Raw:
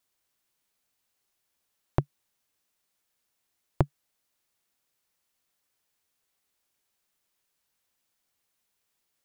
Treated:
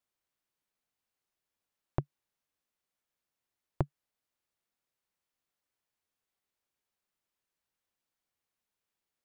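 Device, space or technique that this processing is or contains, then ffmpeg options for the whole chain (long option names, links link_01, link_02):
behind a face mask: -af "highshelf=frequency=3400:gain=-7,volume=-6.5dB"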